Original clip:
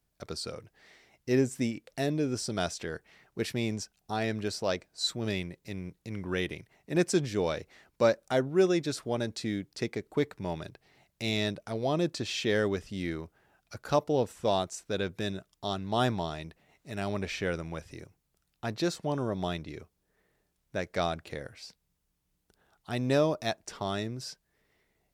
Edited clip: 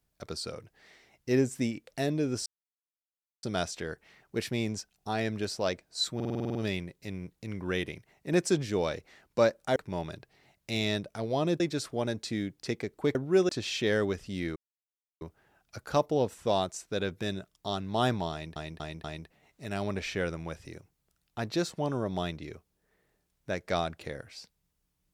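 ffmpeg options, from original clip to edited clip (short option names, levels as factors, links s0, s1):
-filter_complex "[0:a]asplit=18[s0][s1][s2][s3][s4][s5][s6][s7][s8][s9][s10][s11][s12][s13][s14][s15][s16][s17];[s0]atrim=end=2.46,asetpts=PTS-STARTPTS,afade=t=out:st=2.456:d=0.004:c=hsin,apad=pad_dur=0.97[s18];[s1]atrim=start=2.46:end=5.232,asetpts=PTS-STARTPTS,afade=t=in:d=0.004:c=hsin[s19];[s2]atrim=start=5.178:end=5.232[s20];[s3]atrim=start=5.178:end=5.232[s21];[s4]atrim=start=5.178:end=5.232[s22];[s5]atrim=start=5.178:end=5.232[s23];[s6]atrim=start=5.178:end=5.232[s24];[s7]atrim=start=5.178:end=5.232[s25];[s8]atrim=start=5.178:end=5.232[s26];[s9]atrim=start=5.178:end=8.392[s27];[s10]atrim=start=10.278:end=12.122[s28];[s11]atrim=start=8.728:end=10.282[s29];[s12]atrim=start=8.388:end=8.732[s30];[s13]atrim=start=12.118:end=13.19,asetpts=PTS-STARTPTS,afade=t=out:st=1.068:d=0.004:c=hsin,apad=pad_dur=0.65[s31];[s14]atrim=start=13.19:end=16.542,asetpts=PTS-STARTPTS,afade=t=in:d=0.004:c=hsin[s32];[s15]atrim=start=16.298:end=16.542[s33];[s16]atrim=start=16.298:end=16.542[s34];[s17]atrim=start=16.298[s35];[s18][s19]concat=n=2:v=0:a=1[s36];[s36][s20]acrossfade=d=0.004:c1=hsin:c2=hsin[s37];[s37][s21]acrossfade=d=0.004:c1=hsin:c2=hsin[s38];[s38][s22]acrossfade=d=0.004:c1=hsin:c2=hsin[s39];[s39][s23]acrossfade=d=0.004:c1=hsin:c2=hsin[s40];[s40][s24]acrossfade=d=0.004:c1=hsin:c2=hsin[s41];[s41][s25]acrossfade=d=0.004:c1=hsin:c2=hsin[s42];[s42][s26]acrossfade=d=0.004:c1=hsin:c2=hsin[s43];[s43][s27]acrossfade=d=0.004:c1=hsin:c2=hsin[s44];[s44][s28]acrossfade=d=0.004:c1=hsin:c2=hsin[s45];[s45][s29]acrossfade=d=0.004:c1=hsin:c2=hsin[s46];[s46][s30]acrossfade=d=0.004:c1=hsin:c2=hsin[s47];[s31][s32]concat=n=2:v=0:a=1[s48];[s47][s48]acrossfade=d=0.004:c1=hsin:c2=hsin[s49];[s49][s33]acrossfade=d=0.004:c1=hsin:c2=hsin[s50];[s50][s34]acrossfade=d=0.004:c1=hsin:c2=hsin[s51];[s51][s35]acrossfade=d=0.004:c1=hsin:c2=hsin"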